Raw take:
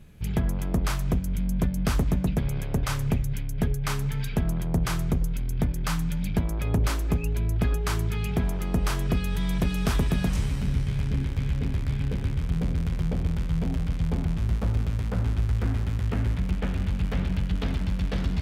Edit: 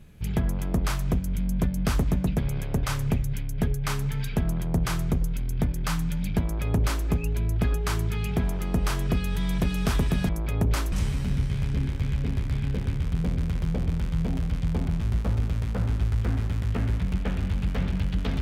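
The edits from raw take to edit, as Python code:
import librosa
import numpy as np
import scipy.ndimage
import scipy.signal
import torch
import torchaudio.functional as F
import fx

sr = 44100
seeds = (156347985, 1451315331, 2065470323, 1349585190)

y = fx.edit(x, sr, fx.duplicate(start_s=6.42, length_s=0.63, to_s=10.29), tone=tone)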